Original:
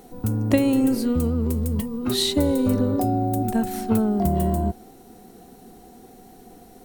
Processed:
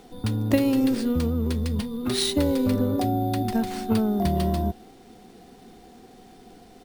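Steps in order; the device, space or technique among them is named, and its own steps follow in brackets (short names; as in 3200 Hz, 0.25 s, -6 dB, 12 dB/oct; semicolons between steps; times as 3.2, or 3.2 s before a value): crushed at another speed (playback speed 0.8×; sample-and-hold 4×; playback speed 1.25×); gain -2 dB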